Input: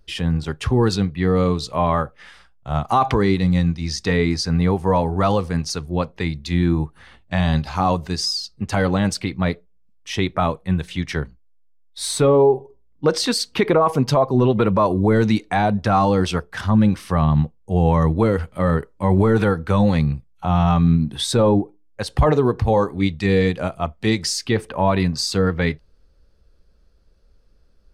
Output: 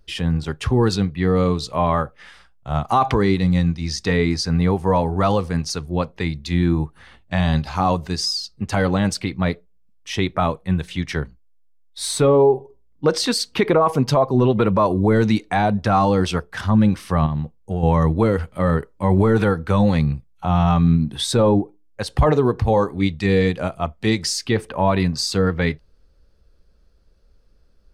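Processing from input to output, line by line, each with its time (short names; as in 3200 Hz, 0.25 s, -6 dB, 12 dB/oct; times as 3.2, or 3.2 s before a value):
17.26–17.83 compressor, threshold -19 dBFS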